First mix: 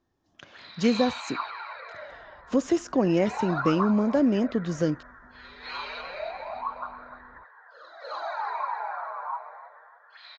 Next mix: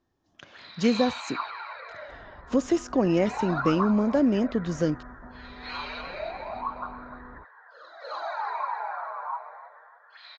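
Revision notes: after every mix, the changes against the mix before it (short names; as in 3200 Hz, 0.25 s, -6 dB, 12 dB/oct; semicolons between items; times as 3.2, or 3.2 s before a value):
second sound +10.0 dB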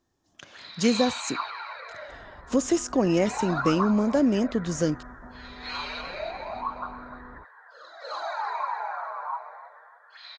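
master: remove air absorption 130 m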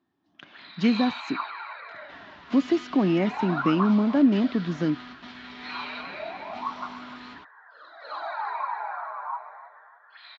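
second sound: remove steep low-pass 1200 Hz; master: add speaker cabinet 150–3700 Hz, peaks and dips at 190 Hz +4 dB, 280 Hz +5 dB, 510 Hz -10 dB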